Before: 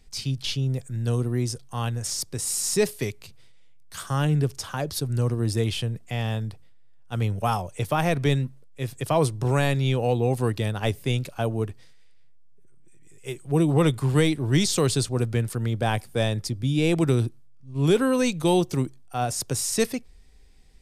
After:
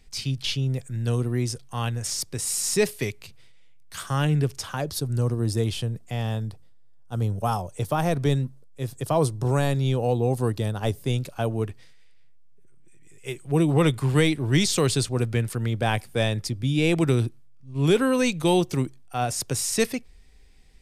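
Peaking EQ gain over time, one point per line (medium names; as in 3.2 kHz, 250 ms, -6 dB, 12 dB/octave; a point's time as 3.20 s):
peaking EQ 2.3 kHz 1.1 oct
4.60 s +3.5 dB
5.07 s -5 dB
6.48 s -5 dB
7.21 s -14 dB
7.54 s -7 dB
11.01 s -7 dB
11.68 s +3.5 dB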